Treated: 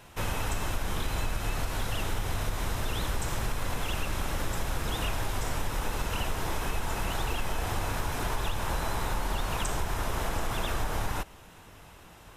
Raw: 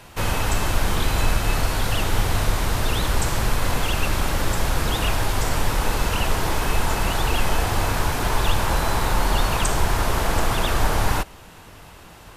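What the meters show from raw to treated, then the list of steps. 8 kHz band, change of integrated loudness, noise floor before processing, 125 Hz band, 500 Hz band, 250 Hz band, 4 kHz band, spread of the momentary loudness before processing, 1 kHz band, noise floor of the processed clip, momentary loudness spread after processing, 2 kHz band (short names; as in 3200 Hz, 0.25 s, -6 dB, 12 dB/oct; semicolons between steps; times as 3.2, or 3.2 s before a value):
-9.5 dB, -9.5 dB, -44 dBFS, -9.5 dB, -9.5 dB, -9.5 dB, -10.0 dB, 2 LU, -9.5 dB, -51 dBFS, 2 LU, -9.5 dB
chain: notch 4500 Hz, Q 12; compressor, threshold -18 dBFS, peak gain reduction 6 dB; vibrato 10 Hz 29 cents; gain -7 dB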